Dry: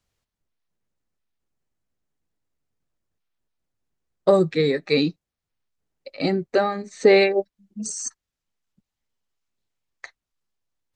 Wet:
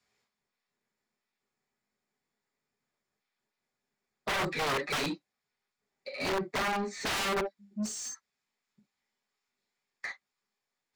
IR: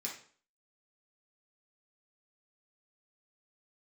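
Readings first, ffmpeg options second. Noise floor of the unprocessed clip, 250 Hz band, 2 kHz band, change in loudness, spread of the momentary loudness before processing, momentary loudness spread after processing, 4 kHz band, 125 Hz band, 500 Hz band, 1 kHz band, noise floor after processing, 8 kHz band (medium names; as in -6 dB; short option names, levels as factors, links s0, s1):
under -85 dBFS, -12.5 dB, -4.5 dB, -11.5 dB, 14 LU, 13 LU, -4.5 dB, -12.0 dB, -16.5 dB, -4.0 dB, under -85 dBFS, -5.5 dB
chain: -filter_complex "[1:a]atrim=start_sample=2205,atrim=end_sample=3087[s0];[0:a][s0]afir=irnorm=-1:irlink=0,aeval=exprs='(mod(6.68*val(0)+1,2)-1)/6.68':c=same,asplit=2[s1][s2];[s2]highpass=f=720:p=1,volume=12.6,asoftclip=type=tanh:threshold=0.158[s3];[s1][s3]amix=inputs=2:normalize=0,lowpass=f=2900:p=1,volume=0.501,volume=0.355"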